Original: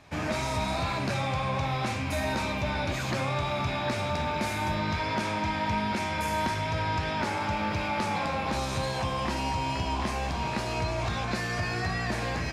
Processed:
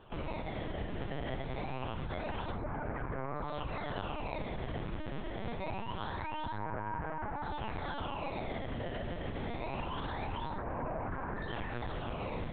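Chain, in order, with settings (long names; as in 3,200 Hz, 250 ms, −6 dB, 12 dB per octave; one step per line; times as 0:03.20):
Butterworth low-pass 1,800 Hz 36 dB per octave
brickwall limiter −29.5 dBFS, peak gain reduction 10.5 dB
sample-and-hold swept by an LFO 20×, swing 160% 0.25 Hz
harmonic generator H 8 −17 dB, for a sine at −4 dBFS
linear-prediction vocoder at 8 kHz pitch kept
level −1 dB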